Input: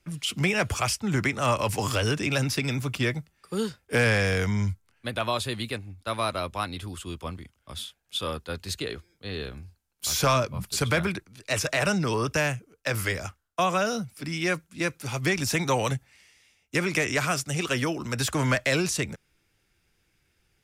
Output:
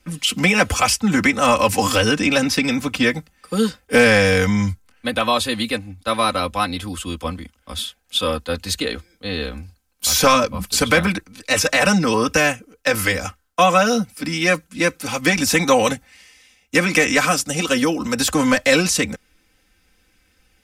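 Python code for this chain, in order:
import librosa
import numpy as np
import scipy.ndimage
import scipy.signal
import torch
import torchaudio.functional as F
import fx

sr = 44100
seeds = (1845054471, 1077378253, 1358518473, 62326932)

y = fx.high_shelf(x, sr, hz=10000.0, db=-6.5, at=(2.05, 3.06))
y = y + 0.82 * np.pad(y, (int(3.9 * sr / 1000.0), 0))[:len(y)]
y = fx.dynamic_eq(y, sr, hz=1900.0, q=0.88, threshold_db=-39.0, ratio=4.0, max_db=-4, at=(17.29, 18.69))
y = y * librosa.db_to_amplitude(7.5)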